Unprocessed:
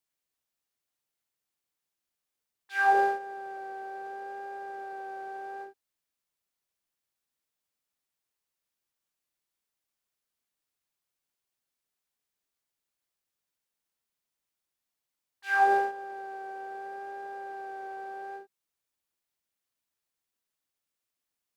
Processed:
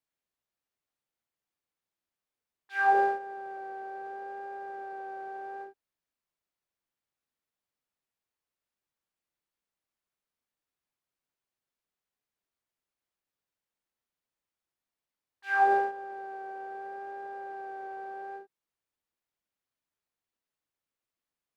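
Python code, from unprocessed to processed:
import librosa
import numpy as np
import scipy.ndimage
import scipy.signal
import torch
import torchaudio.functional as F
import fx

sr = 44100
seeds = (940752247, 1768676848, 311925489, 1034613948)

y = fx.high_shelf(x, sr, hz=3500.0, db=-10.0)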